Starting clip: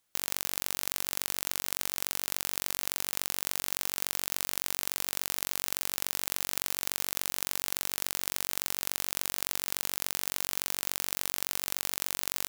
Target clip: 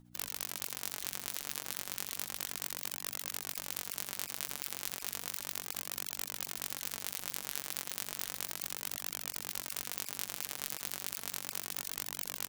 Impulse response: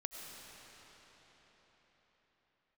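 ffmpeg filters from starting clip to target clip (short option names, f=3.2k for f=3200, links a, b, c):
-filter_complex "[0:a]bass=f=250:g=-8,treble=f=4k:g=-2,tremolo=f=14:d=0.78,asplit=2[a][b];[b]acrusher=samples=17:mix=1:aa=0.000001,volume=-4dB[c];[a][c]amix=inputs=2:normalize=0,flanger=delay=1:depth=5.8:regen=44:speed=0.33:shape=triangular,aeval=exprs='val(0)+0.001*(sin(2*PI*60*n/s)+sin(2*PI*2*60*n/s)/2+sin(2*PI*3*60*n/s)/3+sin(2*PI*4*60*n/s)/4+sin(2*PI*5*60*n/s)/5)':c=same,asplit=2[d][e];[e]aecho=0:1:383:0.119[f];[d][f]amix=inputs=2:normalize=0,afftfilt=real='re*lt(hypot(re,im),0.00794)':imag='im*lt(hypot(re,im),0.00794)':win_size=1024:overlap=0.75,volume=6.5dB"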